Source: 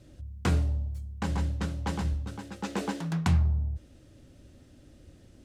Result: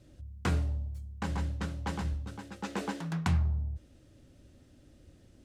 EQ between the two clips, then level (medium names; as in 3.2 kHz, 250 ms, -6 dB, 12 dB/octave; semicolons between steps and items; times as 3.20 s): dynamic bell 1.5 kHz, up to +3 dB, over -47 dBFS, Q 0.72; -4.0 dB